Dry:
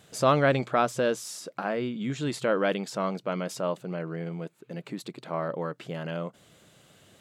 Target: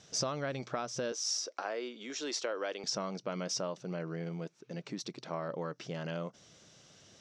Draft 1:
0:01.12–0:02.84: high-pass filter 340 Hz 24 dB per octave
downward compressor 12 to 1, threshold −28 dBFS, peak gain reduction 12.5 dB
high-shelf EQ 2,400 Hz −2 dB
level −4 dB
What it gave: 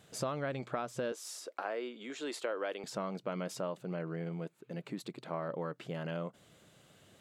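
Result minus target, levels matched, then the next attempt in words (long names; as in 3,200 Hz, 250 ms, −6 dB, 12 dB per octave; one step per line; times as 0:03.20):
8,000 Hz band −8.0 dB
0:01.12–0:02.84: high-pass filter 340 Hz 24 dB per octave
downward compressor 12 to 1, threshold −28 dBFS, peak gain reduction 12.5 dB
low-pass with resonance 5,700 Hz, resonance Q 8.3
high-shelf EQ 2,400 Hz −2 dB
level −4 dB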